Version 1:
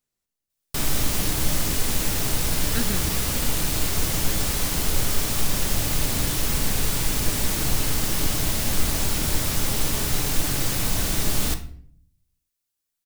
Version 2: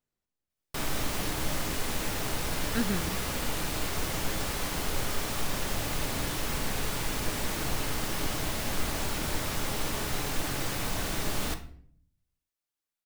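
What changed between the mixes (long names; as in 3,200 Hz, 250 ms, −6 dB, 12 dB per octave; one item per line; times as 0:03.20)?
background: add low-shelf EQ 320 Hz −9.5 dB
master: add high-shelf EQ 3,200 Hz −11.5 dB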